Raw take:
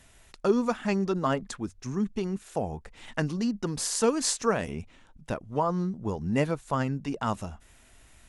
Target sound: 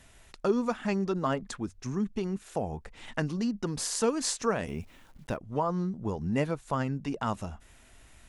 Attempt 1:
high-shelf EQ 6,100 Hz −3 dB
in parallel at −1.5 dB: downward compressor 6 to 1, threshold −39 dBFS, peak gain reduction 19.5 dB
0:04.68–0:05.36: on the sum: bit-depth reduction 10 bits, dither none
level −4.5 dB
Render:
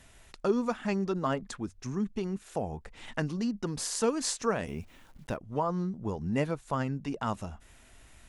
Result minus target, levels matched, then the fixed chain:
downward compressor: peak gain reduction +5.5 dB
high-shelf EQ 6,100 Hz −3 dB
in parallel at −1.5 dB: downward compressor 6 to 1, threshold −32.5 dBFS, peak gain reduction 14 dB
0:04.68–0:05.36: on the sum: bit-depth reduction 10 bits, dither none
level −4.5 dB

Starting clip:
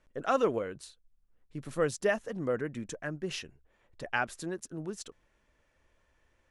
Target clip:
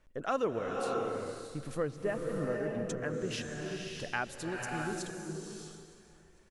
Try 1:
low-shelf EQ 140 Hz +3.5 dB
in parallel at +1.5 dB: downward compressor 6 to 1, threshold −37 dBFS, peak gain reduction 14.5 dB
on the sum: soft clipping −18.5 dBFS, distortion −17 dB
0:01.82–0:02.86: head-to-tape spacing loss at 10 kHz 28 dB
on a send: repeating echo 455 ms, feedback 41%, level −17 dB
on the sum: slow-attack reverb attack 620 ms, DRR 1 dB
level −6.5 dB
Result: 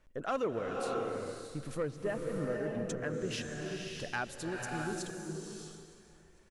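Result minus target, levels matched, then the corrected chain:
soft clipping: distortion +17 dB
low-shelf EQ 140 Hz +3.5 dB
in parallel at +1.5 dB: downward compressor 6 to 1, threshold −37 dBFS, peak gain reduction 14.5 dB
on the sum: soft clipping −8 dBFS, distortion −34 dB
0:01.82–0:02.86: head-to-tape spacing loss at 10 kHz 28 dB
on a send: repeating echo 455 ms, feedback 41%, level −17 dB
on the sum: slow-attack reverb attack 620 ms, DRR 1 dB
level −6.5 dB

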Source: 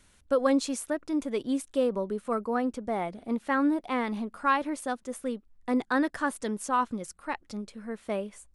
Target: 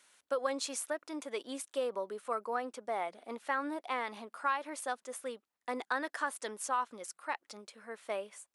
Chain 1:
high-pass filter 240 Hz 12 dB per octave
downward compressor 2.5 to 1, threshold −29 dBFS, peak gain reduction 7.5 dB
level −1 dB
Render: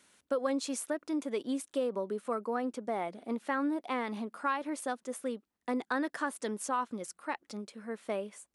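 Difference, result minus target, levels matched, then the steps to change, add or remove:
250 Hz band +7.5 dB
change: high-pass filter 600 Hz 12 dB per octave

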